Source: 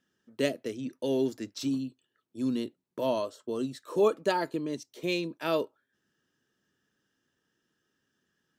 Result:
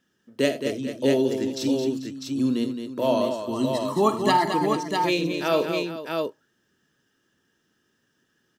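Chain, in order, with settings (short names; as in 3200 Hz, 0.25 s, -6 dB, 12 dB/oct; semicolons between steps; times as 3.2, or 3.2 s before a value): 3.41–4.52 comb 1 ms, depth 97%; tapped delay 47/81/218/440/650 ms -12/-14.5/-7.5/-14/-4.5 dB; gain +5.5 dB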